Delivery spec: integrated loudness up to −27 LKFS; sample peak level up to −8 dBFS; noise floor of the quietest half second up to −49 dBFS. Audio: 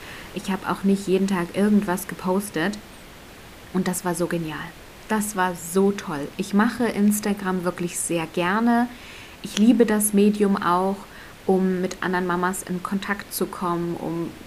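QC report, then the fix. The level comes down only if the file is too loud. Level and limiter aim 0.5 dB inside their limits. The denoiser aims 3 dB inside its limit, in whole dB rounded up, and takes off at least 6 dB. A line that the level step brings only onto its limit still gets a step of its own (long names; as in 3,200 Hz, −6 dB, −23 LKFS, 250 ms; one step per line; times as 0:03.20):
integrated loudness −23.0 LKFS: out of spec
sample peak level −4.5 dBFS: out of spec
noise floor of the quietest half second −43 dBFS: out of spec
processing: broadband denoise 6 dB, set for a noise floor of −43 dBFS
level −4.5 dB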